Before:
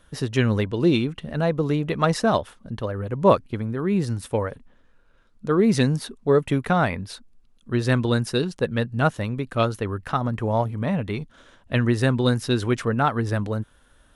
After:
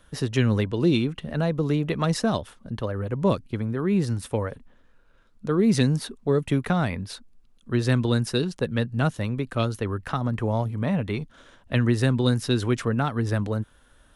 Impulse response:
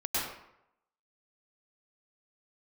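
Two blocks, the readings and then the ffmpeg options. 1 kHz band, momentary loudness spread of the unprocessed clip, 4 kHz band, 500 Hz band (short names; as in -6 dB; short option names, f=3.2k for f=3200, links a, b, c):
-6.0 dB, 10 LU, -1.0 dB, -3.5 dB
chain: -filter_complex "[0:a]acrossover=split=320|3000[a][b][c];[b]acompressor=threshold=-27dB:ratio=3[d];[a][d][c]amix=inputs=3:normalize=0"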